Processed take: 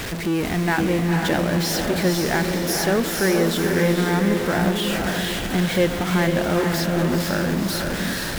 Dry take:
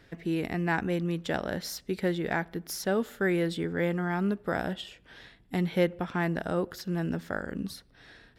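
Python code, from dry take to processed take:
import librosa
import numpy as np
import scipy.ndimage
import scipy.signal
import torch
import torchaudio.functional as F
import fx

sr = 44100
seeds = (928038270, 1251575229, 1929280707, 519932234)

y = x + 0.5 * 10.0 ** (-28.0 / 20.0) * np.sign(x)
y = fx.echo_diffused(y, sr, ms=480, feedback_pct=46, wet_db=-3.0)
y = y * 10.0 ** (4.0 / 20.0)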